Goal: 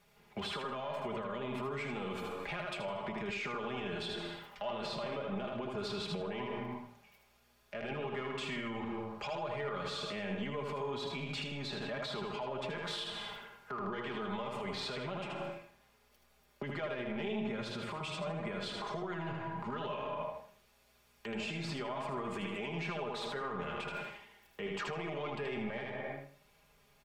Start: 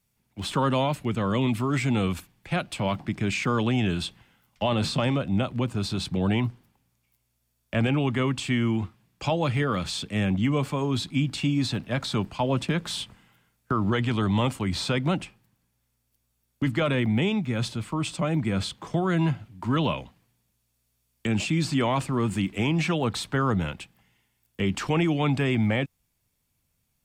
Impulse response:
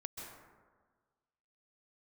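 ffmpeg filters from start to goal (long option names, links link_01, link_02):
-filter_complex "[0:a]asplit=2[link_01][link_02];[link_02]asoftclip=type=tanh:threshold=-25.5dB,volume=-6.5dB[link_03];[link_01][link_03]amix=inputs=2:normalize=0,aeval=exprs='0.237*(cos(1*acos(clip(val(0)/0.237,-1,1)))-cos(1*PI/2))+0.0266*(cos(2*acos(clip(val(0)/0.237,-1,1)))-cos(2*PI/2))+0.00237*(cos(6*acos(clip(val(0)/0.237,-1,1)))-cos(6*PI/2))+0.00376*(cos(8*acos(clip(val(0)/0.237,-1,1)))-cos(8*PI/2))':channel_layout=same,firequalizer=gain_entry='entry(270,0);entry(440,12);entry(8300,-5)':delay=0.05:min_phase=1,asplit=2[link_04][link_05];[1:a]atrim=start_sample=2205,afade=type=out:start_time=0.39:duration=0.01,atrim=end_sample=17640[link_06];[link_05][link_06]afir=irnorm=-1:irlink=0,volume=-4dB[link_07];[link_04][link_07]amix=inputs=2:normalize=0,flanger=delay=6:depth=3.4:regen=80:speed=0.49:shape=triangular,acompressor=threshold=-36dB:ratio=6,aecho=1:1:78|156|234|312:0.562|0.152|0.041|0.0111,alimiter=level_in=9dB:limit=-24dB:level=0:latency=1:release=62,volume=-9dB,aecho=1:1:4.9:0.66,volume=1dB"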